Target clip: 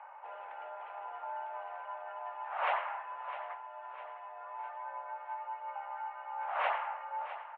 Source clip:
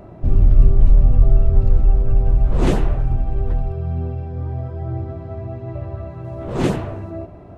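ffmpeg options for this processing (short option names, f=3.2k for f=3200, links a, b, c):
-filter_complex "[0:a]asettb=1/sr,asplit=3[a][b][c];[a]atrim=end=3.544[d];[b]atrim=start=3.54:end=4.26,asetpts=PTS-STARTPTS,afade=t=in:d=0.004:c=qsin,afade=t=out:st=0.716:d=0.004:c=qsin,acompressor=threshold=-21dB:ratio=6[e];[c]atrim=start=4.256[f];[d][e]acrossfade=d=0.004:c1=hsin:c2=qsin[g];[g][f]acrossfade=d=0.004:c1=qsin:c2=hsin,highpass=f=570:t=q:w=0.5412,highpass=f=570:t=q:w=1.307,lowpass=f=2.5k:t=q:w=0.5176,lowpass=f=2.5k:t=q:w=0.7071,lowpass=f=2.5k:t=q:w=1.932,afreqshift=220,aecho=1:1:655|1310|1965|2620|3275:0.224|0.112|0.056|0.028|0.014,volume=-3dB"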